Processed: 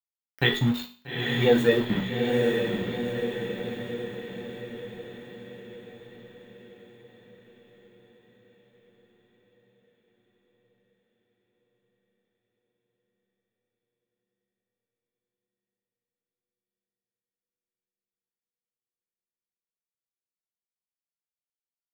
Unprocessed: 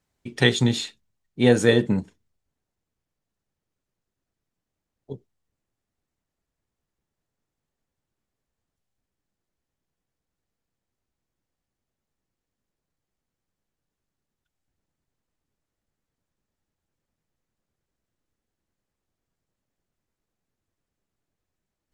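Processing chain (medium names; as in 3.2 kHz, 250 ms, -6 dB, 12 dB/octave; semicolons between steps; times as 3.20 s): expander on every frequency bin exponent 2; treble shelf 5.4 kHz +7 dB; hum notches 50/100/150/200/250/300/350 Hz; in parallel at -2 dB: level held to a coarse grid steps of 13 dB; on the sum: small samples zeroed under -27 dBFS; high-order bell 7.4 kHz -15 dB; echo that smears into a reverb 861 ms, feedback 56%, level -3 dB; on a send at -4 dB: reverberation RT60 0.40 s, pre-delay 5 ms; on the sum: trim -4 dB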